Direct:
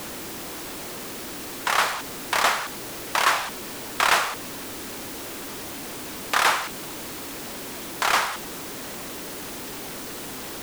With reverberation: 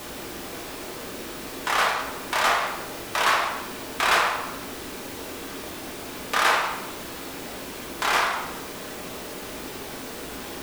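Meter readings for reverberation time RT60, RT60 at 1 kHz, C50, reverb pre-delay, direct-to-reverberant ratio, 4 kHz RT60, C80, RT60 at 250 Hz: 1.0 s, 1.0 s, 3.0 dB, 3 ms, -2.5 dB, 0.65 s, 6.5 dB, 1.2 s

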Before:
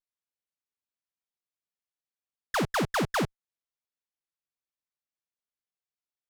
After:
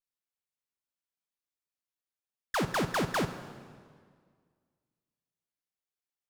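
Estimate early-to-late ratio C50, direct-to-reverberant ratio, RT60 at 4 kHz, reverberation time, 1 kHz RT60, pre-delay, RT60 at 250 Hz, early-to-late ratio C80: 11.0 dB, 10.0 dB, 1.6 s, 1.9 s, 1.8 s, 17 ms, 2.0 s, 12.0 dB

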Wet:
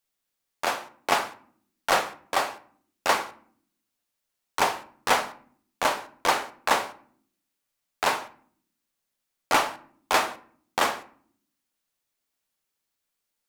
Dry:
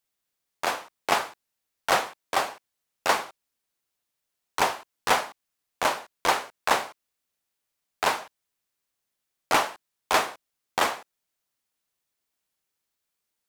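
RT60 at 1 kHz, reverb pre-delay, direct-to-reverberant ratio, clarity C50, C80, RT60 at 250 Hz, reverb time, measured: 0.50 s, 3 ms, 10.0 dB, 15.5 dB, 20.0 dB, 0.95 s, 0.55 s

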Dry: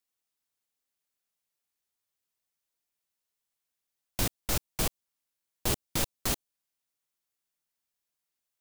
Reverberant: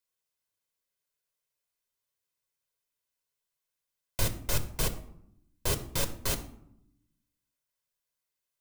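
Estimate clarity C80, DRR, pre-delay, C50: 16.0 dB, 7.5 dB, 7 ms, 13.0 dB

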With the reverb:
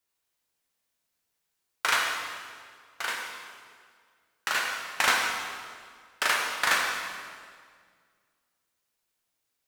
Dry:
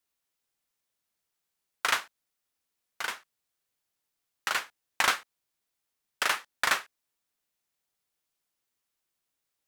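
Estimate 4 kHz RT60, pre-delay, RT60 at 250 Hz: 1.6 s, 11 ms, 2.2 s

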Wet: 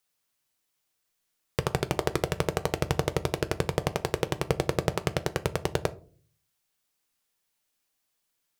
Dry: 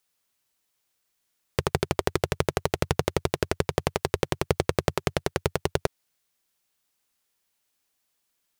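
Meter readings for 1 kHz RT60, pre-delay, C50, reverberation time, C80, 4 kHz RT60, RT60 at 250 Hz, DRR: 0.35 s, 6 ms, 20.5 dB, 0.45 s, 25.5 dB, 0.25 s, 0.65 s, 10.5 dB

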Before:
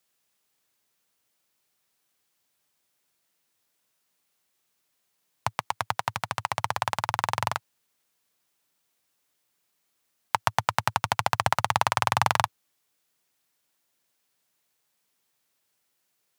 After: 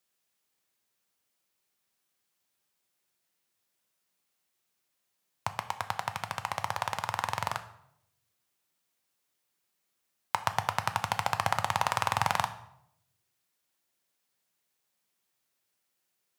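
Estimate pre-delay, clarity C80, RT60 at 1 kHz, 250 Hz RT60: 4 ms, 16.0 dB, 0.70 s, 0.90 s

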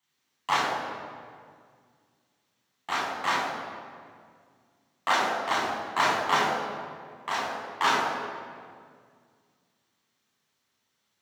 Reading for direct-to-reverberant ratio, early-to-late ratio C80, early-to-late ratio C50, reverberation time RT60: -3.5 dB, 3.0 dB, 1.5 dB, 2.0 s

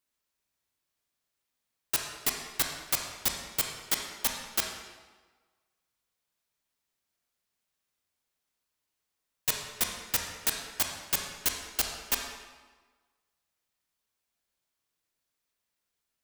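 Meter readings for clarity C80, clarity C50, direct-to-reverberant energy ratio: 5.5 dB, 3.5 dB, 1.5 dB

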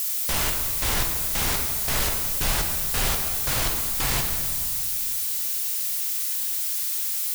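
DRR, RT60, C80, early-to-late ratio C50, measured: 2.5 dB, 2.1 s, 5.5 dB, 4.5 dB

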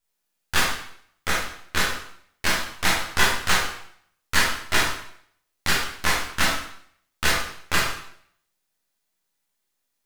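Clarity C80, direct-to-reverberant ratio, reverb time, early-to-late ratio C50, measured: 6.0 dB, -5.0 dB, 0.65 s, 2.5 dB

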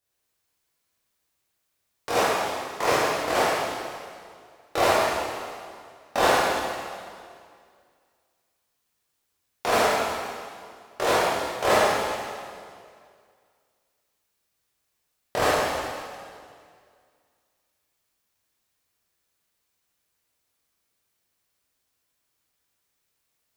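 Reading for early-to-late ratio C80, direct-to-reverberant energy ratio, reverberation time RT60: -1.0 dB, -9.5 dB, 2.2 s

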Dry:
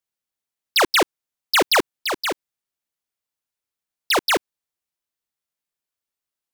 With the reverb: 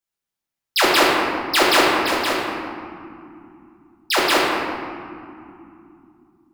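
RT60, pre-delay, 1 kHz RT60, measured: 2.9 s, 3 ms, 2.7 s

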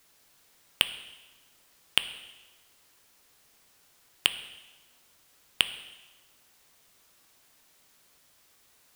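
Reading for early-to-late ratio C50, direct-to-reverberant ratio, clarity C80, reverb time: 12.5 dB, 10.0 dB, 14.0 dB, 1.2 s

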